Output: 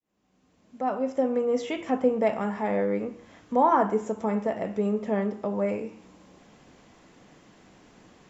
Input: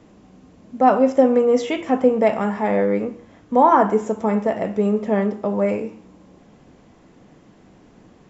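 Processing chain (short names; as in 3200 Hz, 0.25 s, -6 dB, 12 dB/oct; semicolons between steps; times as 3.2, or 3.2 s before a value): opening faded in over 1.85 s; mismatched tape noise reduction encoder only; gain -7 dB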